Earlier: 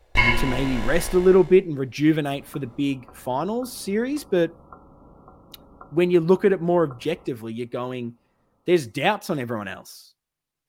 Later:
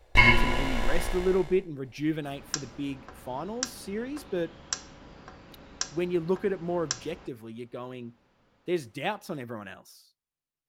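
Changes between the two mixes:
speech −10.0 dB
second sound: remove linear-phase brick-wall low-pass 1,400 Hz

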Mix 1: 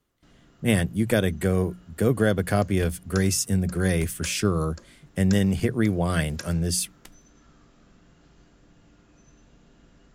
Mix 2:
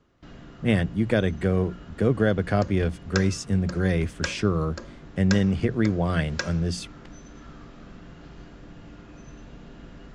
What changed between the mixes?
first sound +12.0 dB
second sound: add high-frequency loss of the air 79 metres
master: add high-frequency loss of the air 130 metres

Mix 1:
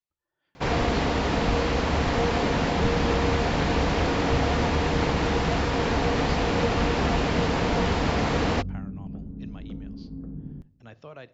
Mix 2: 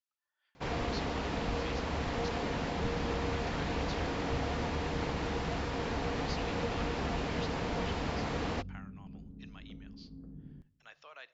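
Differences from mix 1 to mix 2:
speech: add high-pass filter 1,200 Hz 12 dB per octave
first sound −10.5 dB
second sound −11.5 dB

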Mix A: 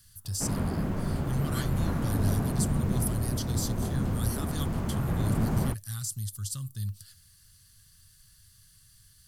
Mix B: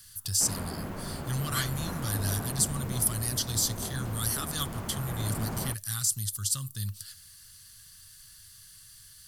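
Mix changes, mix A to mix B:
speech +8.0 dB
master: add low-shelf EQ 380 Hz −10 dB

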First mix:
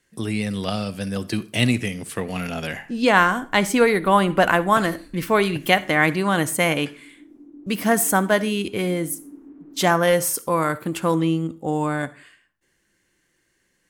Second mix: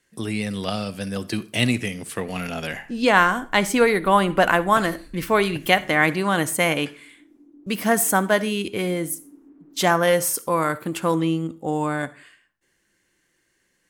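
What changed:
first sound +8.0 dB
second sound −5.0 dB
master: add low-shelf EQ 210 Hz −3.5 dB

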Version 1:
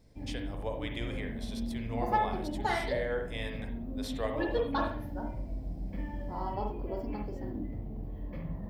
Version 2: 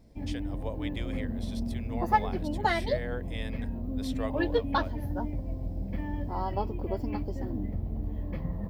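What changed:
background +7.0 dB
reverb: off

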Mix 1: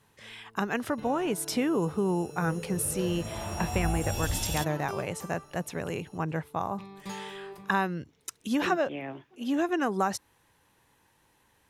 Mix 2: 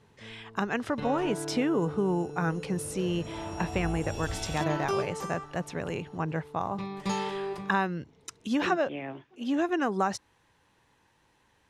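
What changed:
first sound +9.0 dB
second sound −5.0 dB
master: add low-pass filter 6,900 Hz 12 dB per octave

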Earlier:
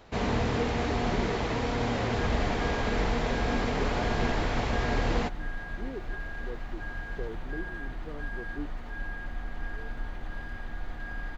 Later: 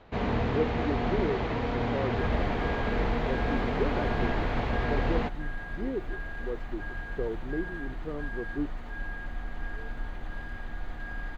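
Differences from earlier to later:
speech +6.5 dB
first sound: add high-frequency loss of the air 170 metres
master: add parametric band 5,400 Hz −4.5 dB 0.41 octaves

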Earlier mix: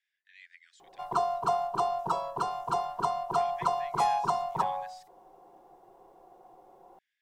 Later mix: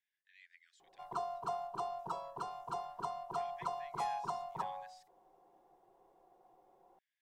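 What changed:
speech −8.0 dB
background −11.0 dB

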